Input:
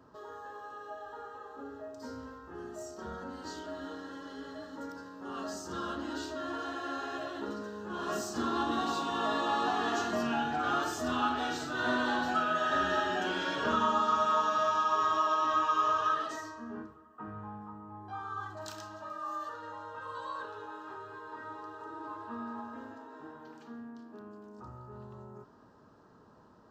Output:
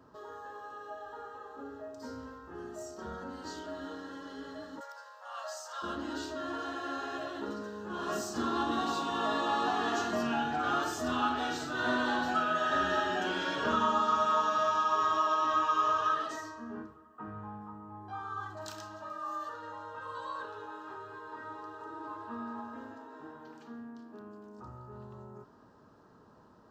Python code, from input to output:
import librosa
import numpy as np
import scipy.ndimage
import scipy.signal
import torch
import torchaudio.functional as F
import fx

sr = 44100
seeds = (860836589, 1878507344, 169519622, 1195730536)

y = fx.steep_highpass(x, sr, hz=530.0, slope=96, at=(4.79, 5.82), fade=0.02)